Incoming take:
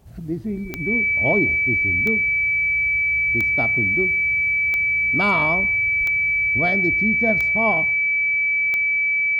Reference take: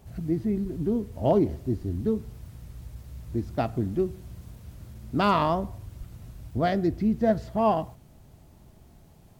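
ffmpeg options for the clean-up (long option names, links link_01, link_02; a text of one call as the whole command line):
ffmpeg -i in.wav -af "adeclick=threshold=4,bandreject=frequency=2300:width=30" out.wav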